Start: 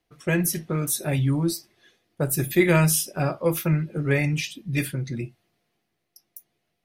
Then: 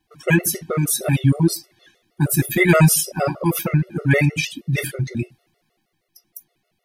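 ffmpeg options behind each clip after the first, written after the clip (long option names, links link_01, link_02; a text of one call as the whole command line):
ffmpeg -i in.wav -af "afftfilt=real='re*gt(sin(2*PI*6.4*pts/sr)*(1-2*mod(floor(b*sr/1024/370),2)),0)':imag='im*gt(sin(2*PI*6.4*pts/sr)*(1-2*mod(floor(b*sr/1024/370),2)),0)':win_size=1024:overlap=0.75,volume=8.5dB" out.wav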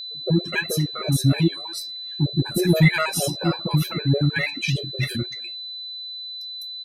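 ffmpeg -i in.wav -filter_complex "[0:a]highshelf=frequency=8000:gain=-11,acrossover=split=700[link_01][link_02];[link_02]adelay=250[link_03];[link_01][link_03]amix=inputs=2:normalize=0,aeval=exprs='val(0)+0.0355*sin(2*PI*4000*n/s)':channel_layout=same,volume=-2.5dB" out.wav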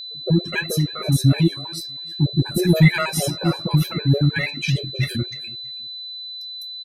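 ffmpeg -i in.wav -af "lowshelf=frequency=150:gain=6,aecho=1:1:323|646:0.0708|0.017" out.wav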